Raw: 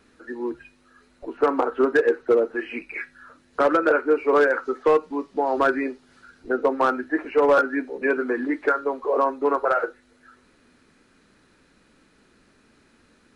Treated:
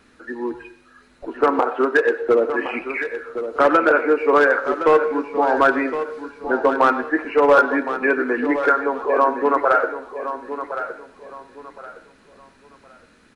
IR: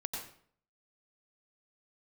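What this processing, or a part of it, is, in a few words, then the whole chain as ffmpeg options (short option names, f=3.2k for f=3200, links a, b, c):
filtered reverb send: -filter_complex "[0:a]asplit=2[a][b];[b]highpass=f=380:w=0.5412,highpass=f=380:w=1.3066,lowpass=4.1k[c];[1:a]atrim=start_sample=2205[d];[c][d]afir=irnorm=-1:irlink=0,volume=-10dB[e];[a][e]amix=inputs=2:normalize=0,asettb=1/sr,asplit=3[f][g][h];[f]atrim=end=1.594[i];[g]atrim=start=1.59:end=2.22,asetpts=PTS-STARTPTS,afade=t=in:d=0.004:c=qsin,afade=t=out:st=0.626:d=0.004:c=qsin,highpass=f=280:p=1[j];[h]atrim=start=2.216[k];[i][j]acrossfade=d=0.004:c1=hsin:c2=qsin[l];[l][k]acrossfade=d=0.004:c1=qsin:c2=hsin,aecho=1:1:1065|2130|3195:0.299|0.0836|0.0234,volume=3.5dB"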